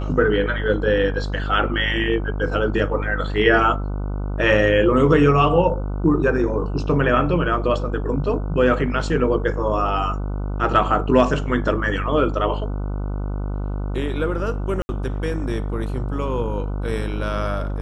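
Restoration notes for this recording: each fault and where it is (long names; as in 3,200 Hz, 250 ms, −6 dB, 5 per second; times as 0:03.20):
mains buzz 50 Hz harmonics 30 −25 dBFS
0:14.82–0:14.89: drop-out 70 ms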